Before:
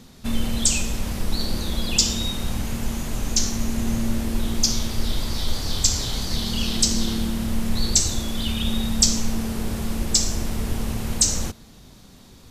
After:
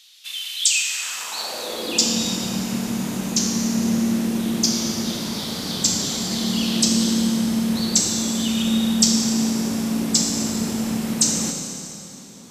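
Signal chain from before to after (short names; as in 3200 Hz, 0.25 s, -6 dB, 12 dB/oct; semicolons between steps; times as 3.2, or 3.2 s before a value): high-pass sweep 3100 Hz -> 200 Hz, 0.66–2.18; Schroeder reverb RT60 2.7 s, combs from 25 ms, DRR 2.5 dB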